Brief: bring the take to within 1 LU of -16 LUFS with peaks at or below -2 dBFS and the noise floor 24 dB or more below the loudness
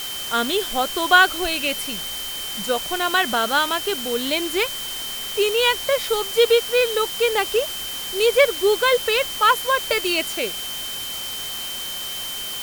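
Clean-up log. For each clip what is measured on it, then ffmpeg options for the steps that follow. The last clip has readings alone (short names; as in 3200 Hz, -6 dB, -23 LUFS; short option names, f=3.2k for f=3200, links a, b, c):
steady tone 3100 Hz; tone level -30 dBFS; noise floor -30 dBFS; noise floor target -45 dBFS; loudness -20.5 LUFS; peak -1.0 dBFS; loudness target -16.0 LUFS
-> -af "bandreject=f=3.1k:w=30"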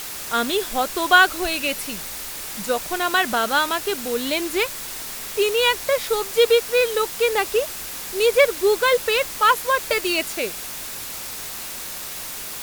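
steady tone none; noise floor -33 dBFS; noise floor target -45 dBFS
-> -af "afftdn=nr=12:nf=-33"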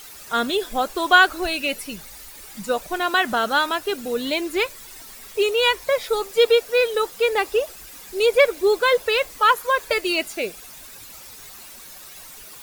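noise floor -42 dBFS; noise floor target -45 dBFS
-> -af "afftdn=nr=6:nf=-42"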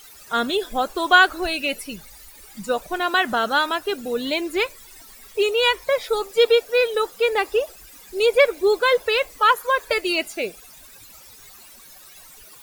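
noise floor -46 dBFS; loudness -20.5 LUFS; peak -1.5 dBFS; loudness target -16.0 LUFS
-> -af "volume=4.5dB,alimiter=limit=-2dB:level=0:latency=1"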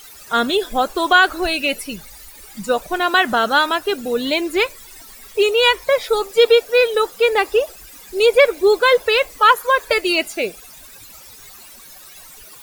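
loudness -16.5 LUFS; peak -2.0 dBFS; noise floor -41 dBFS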